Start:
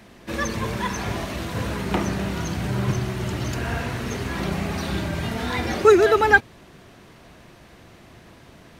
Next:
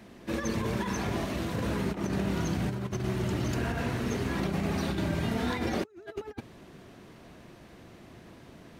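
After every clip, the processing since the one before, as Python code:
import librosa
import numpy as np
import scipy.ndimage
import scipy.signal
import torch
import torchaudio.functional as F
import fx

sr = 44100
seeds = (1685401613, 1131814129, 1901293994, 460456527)

y = fx.over_compress(x, sr, threshold_db=-26.0, ratio=-0.5)
y = fx.peak_eq(y, sr, hz=270.0, db=5.5, octaves=2.2)
y = y * librosa.db_to_amplitude(-8.5)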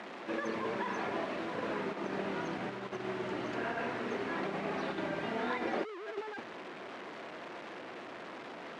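y = fx.delta_mod(x, sr, bps=64000, step_db=-35.0)
y = fx.bandpass_edges(y, sr, low_hz=380.0, high_hz=2400.0)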